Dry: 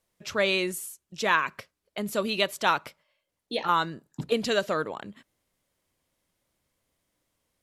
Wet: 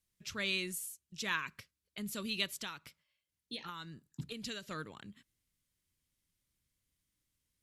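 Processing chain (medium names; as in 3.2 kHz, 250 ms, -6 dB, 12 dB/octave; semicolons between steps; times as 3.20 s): 2.63–4.71 s: compression 6:1, threshold -28 dBFS, peak gain reduction 10 dB; amplifier tone stack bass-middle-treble 6-0-2; trim +9.5 dB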